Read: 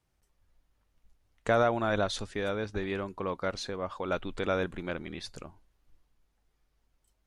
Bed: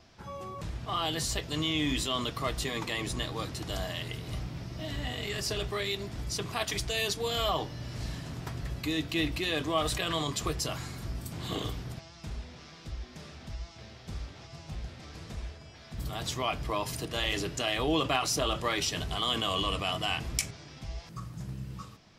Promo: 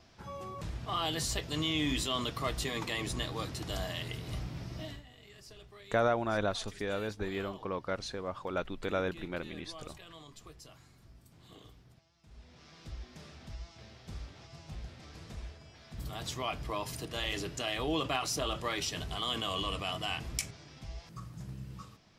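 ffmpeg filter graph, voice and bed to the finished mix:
-filter_complex "[0:a]adelay=4450,volume=-3dB[a];[1:a]volume=14dB,afade=t=out:st=4.77:d=0.26:silence=0.11885,afade=t=in:st=12.27:d=0.55:silence=0.158489[b];[a][b]amix=inputs=2:normalize=0"

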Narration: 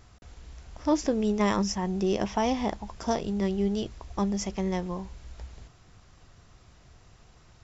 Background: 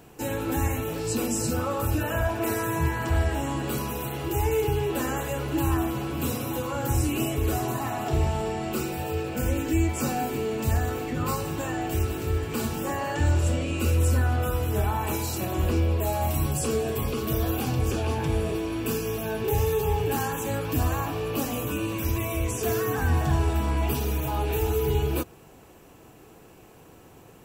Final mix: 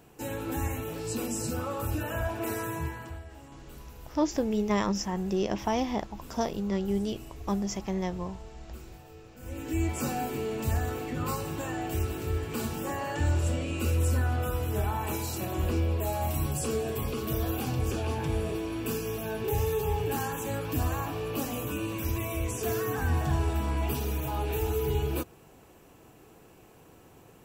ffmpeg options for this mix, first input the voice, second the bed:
-filter_complex "[0:a]adelay=3300,volume=-2dB[a];[1:a]volume=11.5dB,afade=t=out:st=2.63:d=0.58:silence=0.16788,afade=t=in:st=9.4:d=0.48:silence=0.141254[b];[a][b]amix=inputs=2:normalize=0"

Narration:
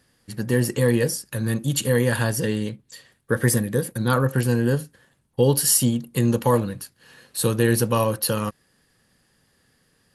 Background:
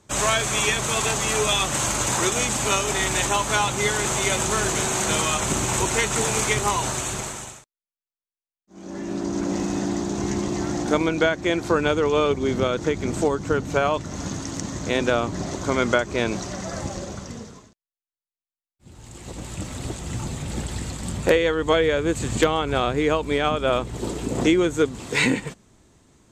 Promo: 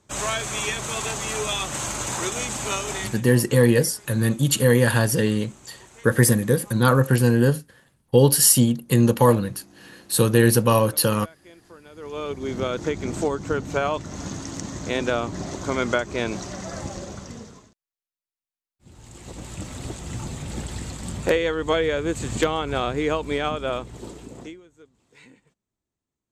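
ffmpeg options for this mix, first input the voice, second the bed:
-filter_complex "[0:a]adelay=2750,volume=3dB[a];[1:a]volume=19dB,afade=t=out:st=2.95:d=0.26:silence=0.0841395,afade=t=in:st=11.91:d=0.85:silence=0.0630957,afade=t=out:st=23.33:d=1.28:silence=0.0375837[b];[a][b]amix=inputs=2:normalize=0"

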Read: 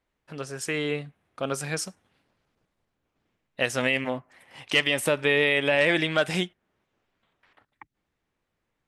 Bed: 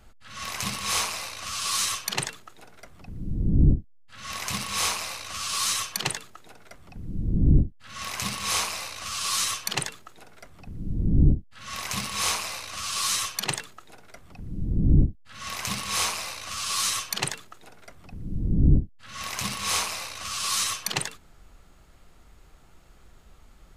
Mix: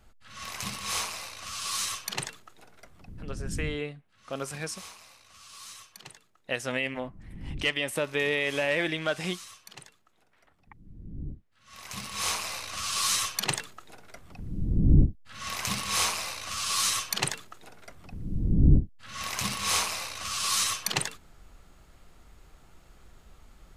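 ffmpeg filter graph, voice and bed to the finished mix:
-filter_complex "[0:a]adelay=2900,volume=-5.5dB[a];[1:a]volume=14dB,afade=t=out:st=3.04:d=0.67:silence=0.188365,afade=t=in:st=11.64:d=0.98:silence=0.112202[b];[a][b]amix=inputs=2:normalize=0"

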